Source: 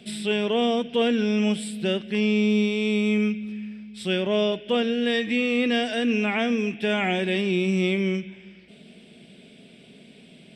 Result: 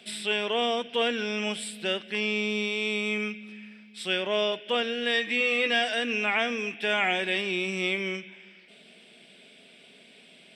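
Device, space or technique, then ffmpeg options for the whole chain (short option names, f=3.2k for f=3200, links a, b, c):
filter by subtraction: -filter_complex "[0:a]asplit=2[a][b];[b]lowpass=1.2k,volume=-1[c];[a][c]amix=inputs=2:normalize=0,asettb=1/sr,asplit=3[d][e][f];[d]atrim=end=5.394[g];[e]atrim=start=5.39:end=5.89,asetpts=PTS-STARTPTS,afade=t=in:d=0.004:c=qsin,afade=t=out:st=0.496:d=0.004:c=qsin,asplit=2[h][i];[i]adelay=14,volume=-6dB[j];[h][j]amix=inputs=2:normalize=0,atrim=end_sample=22050[k];[f]atrim=start=5.886[l];[g][k]acrossfade=d=0.004:c1=hsin:c2=qsin[m];[m][l]acrossfade=d=0.004:c1=qsin:c2=hsin"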